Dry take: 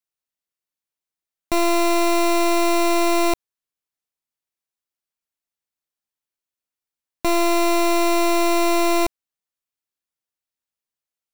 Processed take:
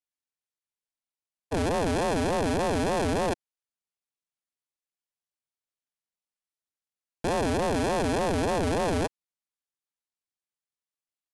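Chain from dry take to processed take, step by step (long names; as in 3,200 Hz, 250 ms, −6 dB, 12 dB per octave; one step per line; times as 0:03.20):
pitch shifter −11.5 semitones
ring modulator whose carrier an LFO sweeps 410 Hz, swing 40%, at 3.4 Hz
level −5.5 dB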